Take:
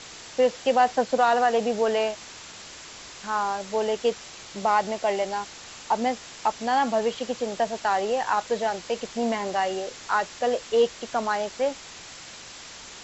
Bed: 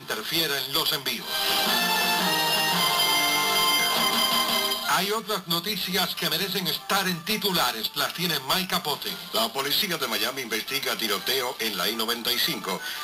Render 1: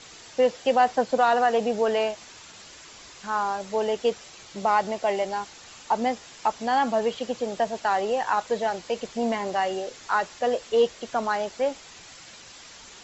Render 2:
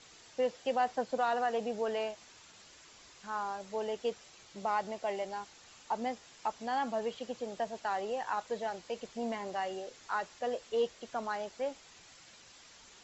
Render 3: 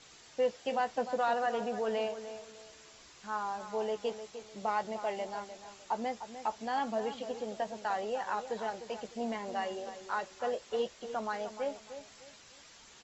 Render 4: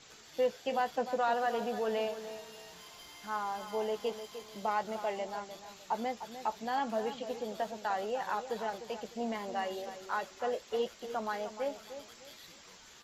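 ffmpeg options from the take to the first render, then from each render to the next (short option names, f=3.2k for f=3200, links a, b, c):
-af "afftdn=nr=6:nf=-43"
-af "volume=-10.5dB"
-filter_complex "[0:a]asplit=2[a][b];[b]adelay=14,volume=-10.5dB[c];[a][c]amix=inputs=2:normalize=0,asplit=2[d][e];[e]adelay=302,lowpass=f=2k:p=1,volume=-10.5dB,asplit=2[f][g];[g]adelay=302,lowpass=f=2k:p=1,volume=0.31,asplit=2[h][i];[i]adelay=302,lowpass=f=2k:p=1,volume=0.31[j];[d][f][h][j]amix=inputs=4:normalize=0"
-filter_complex "[1:a]volume=-31.5dB[a];[0:a][a]amix=inputs=2:normalize=0"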